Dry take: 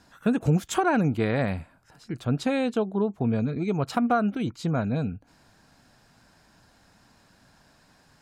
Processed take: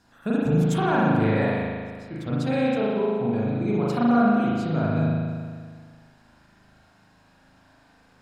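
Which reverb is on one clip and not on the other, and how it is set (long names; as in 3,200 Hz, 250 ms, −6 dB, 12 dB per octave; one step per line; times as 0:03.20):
spring reverb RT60 1.8 s, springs 38 ms, chirp 25 ms, DRR −7 dB
level −5.5 dB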